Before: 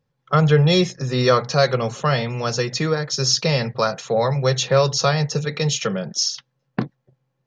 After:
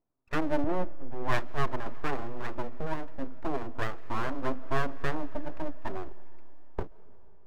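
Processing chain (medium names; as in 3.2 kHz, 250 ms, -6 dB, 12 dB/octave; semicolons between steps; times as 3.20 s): steep low-pass 1.3 kHz 48 dB/octave; full-wave rectifier; on a send at -19 dB: reverberation RT60 3.5 s, pre-delay 90 ms; 0.64–1.86 s: on the sum: three bands expanded up and down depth 70%; trim -9 dB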